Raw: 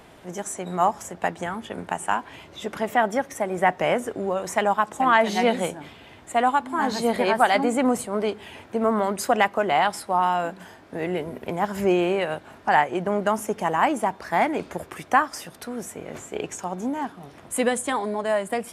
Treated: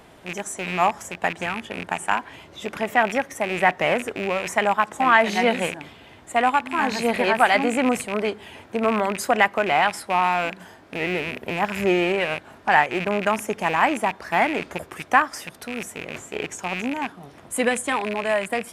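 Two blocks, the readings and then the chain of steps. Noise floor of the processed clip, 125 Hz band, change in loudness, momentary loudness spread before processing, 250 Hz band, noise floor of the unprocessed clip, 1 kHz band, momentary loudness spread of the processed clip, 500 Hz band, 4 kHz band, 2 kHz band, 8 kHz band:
−48 dBFS, +0.5 dB, +1.5 dB, 13 LU, 0.0 dB, −48 dBFS, +0.5 dB, 13 LU, 0.0 dB, +3.5 dB, +5.0 dB, 0.0 dB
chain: loose part that buzzes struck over −38 dBFS, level −21 dBFS
dynamic equaliser 1,900 Hz, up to +5 dB, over −37 dBFS, Q 1.4

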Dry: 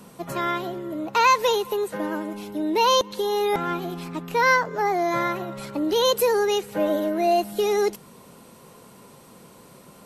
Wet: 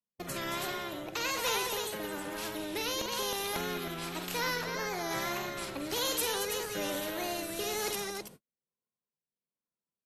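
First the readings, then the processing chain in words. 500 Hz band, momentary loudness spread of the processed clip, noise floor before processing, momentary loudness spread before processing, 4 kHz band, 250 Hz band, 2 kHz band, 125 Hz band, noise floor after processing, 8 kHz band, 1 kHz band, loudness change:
−14.0 dB, 7 LU, −49 dBFS, 12 LU, −5.5 dB, −12.0 dB, −9.0 dB, −7.5 dB, below −85 dBFS, −0.5 dB, −14.5 dB, −10.5 dB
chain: noise gate −38 dBFS, range −59 dB
multi-tap delay 47/218/320 ms −9/−10.5/−8 dB
rotating-speaker cabinet horn 1.1 Hz
pitch vibrato 1.7 Hz 63 cents
every bin compressed towards the loudest bin 2 to 1
level −9 dB

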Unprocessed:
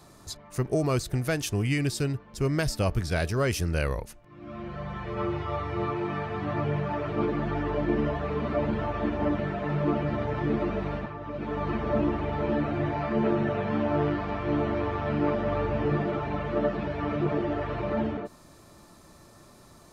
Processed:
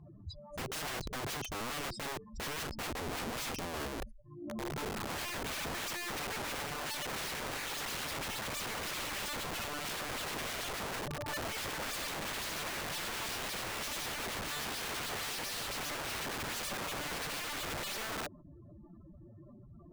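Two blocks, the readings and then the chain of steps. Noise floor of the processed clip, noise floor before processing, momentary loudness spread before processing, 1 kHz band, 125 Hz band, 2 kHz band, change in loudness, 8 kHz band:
−55 dBFS, −53 dBFS, 7 LU, −7.5 dB, −18.0 dB, −2.0 dB, −8.5 dB, can't be measured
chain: expanding power law on the bin magnitudes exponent 3.7
low-pass filter 1,300 Hz 6 dB per octave
harmonic generator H 4 −20 dB, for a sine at −17.5 dBFS
wrap-around overflow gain 34 dB

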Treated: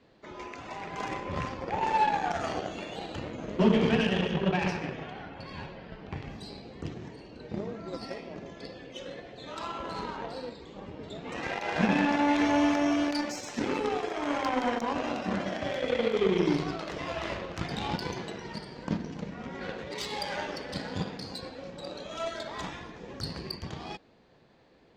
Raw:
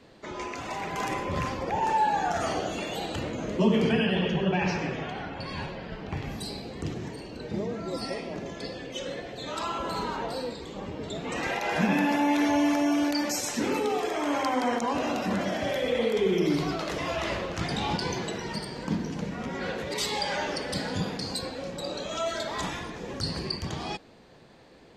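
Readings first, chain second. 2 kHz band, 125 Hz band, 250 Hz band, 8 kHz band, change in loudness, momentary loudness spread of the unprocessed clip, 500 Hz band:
−2.5 dB, −2.5 dB, −2.0 dB, −9.0 dB, −2.0 dB, 12 LU, −2.5 dB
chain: moving average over 4 samples
harmonic generator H 7 −22 dB, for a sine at −12 dBFS

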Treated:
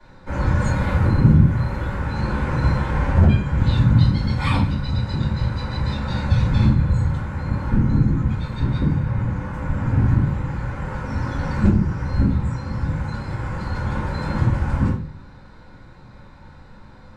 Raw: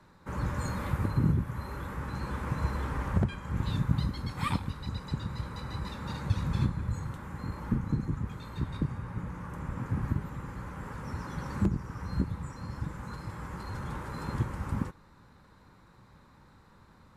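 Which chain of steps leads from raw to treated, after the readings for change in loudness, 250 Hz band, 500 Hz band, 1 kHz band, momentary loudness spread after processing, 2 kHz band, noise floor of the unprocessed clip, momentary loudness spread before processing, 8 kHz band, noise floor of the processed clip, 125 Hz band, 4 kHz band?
+13.0 dB, +12.5 dB, +12.0 dB, +10.0 dB, 10 LU, +12.0 dB, −58 dBFS, 10 LU, can't be measured, −44 dBFS, +14.0 dB, +10.5 dB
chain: low-pass filter 6,900 Hz 12 dB per octave
notch filter 1,200 Hz, Q 9.9
rectangular room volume 40 cubic metres, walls mixed, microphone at 2.5 metres
level −2 dB

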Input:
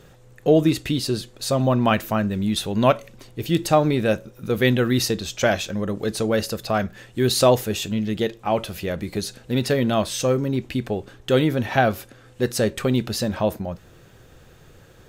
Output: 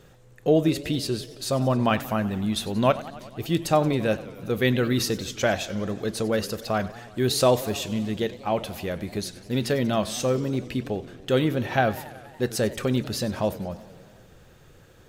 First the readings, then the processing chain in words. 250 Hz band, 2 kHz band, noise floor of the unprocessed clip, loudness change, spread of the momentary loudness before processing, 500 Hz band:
−3.5 dB, −3.5 dB, −50 dBFS, −3.5 dB, 9 LU, −3.5 dB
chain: feedback echo with a swinging delay time 93 ms, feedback 73%, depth 215 cents, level −17.5 dB
level −3.5 dB

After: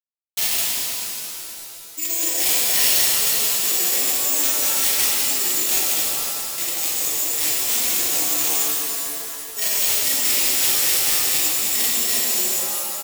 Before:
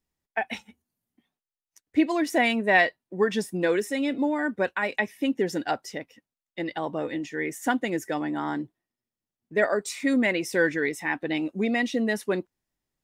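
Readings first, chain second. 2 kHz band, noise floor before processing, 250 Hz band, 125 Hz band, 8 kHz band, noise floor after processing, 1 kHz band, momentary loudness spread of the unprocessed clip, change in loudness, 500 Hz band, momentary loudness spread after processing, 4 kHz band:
−2.0 dB, below −85 dBFS, −12.5 dB, can't be measured, +25.5 dB, −37 dBFS, −3.0 dB, 9 LU, +9.0 dB, −8.5 dB, 9 LU, +16.5 dB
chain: on a send: loudspeakers that aren't time-aligned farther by 13 metres −3 dB, 72 metres −9 dB
on the sum: slack as between gear wheels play −25.5 dBFS
reversed playback
downward compressor 20 to 1, threshold −31 dBFS, peak gain reduction 18.5 dB
reversed playback
spectral tilt +3.5 dB per octave
hum removal 64.73 Hz, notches 18
bad sample-rate conversion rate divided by 6×, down none, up zero stuff
wrap-around overflow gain 13 dB
high shelf with overshoot 1,900 Hz +7.5 dB, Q 1.5
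reverb with rising layers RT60 2.9 s, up +7 semitones, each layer −2 dB, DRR −5 dB
level −3 dB

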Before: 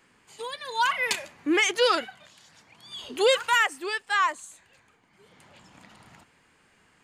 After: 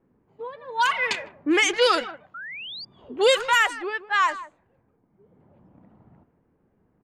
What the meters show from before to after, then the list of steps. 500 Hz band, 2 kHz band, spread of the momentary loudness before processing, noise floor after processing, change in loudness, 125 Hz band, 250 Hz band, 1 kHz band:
+2.5 dB, +2.5 dB, 18 LU, −67 dBFS, +2.5 dB, can't be measured, +2.5 dB, +2.5 dB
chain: far-end echo of a speakerphone 160 ms, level −14 dB
low-pass that shuts in the quiet parts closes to 460 Hz, open at −18 dBFS
sound drawn into the spectrogram rise, 0:02.34–0:02.85, 1,300–4,900 Hz −39 dBFS
level +2.5 dB

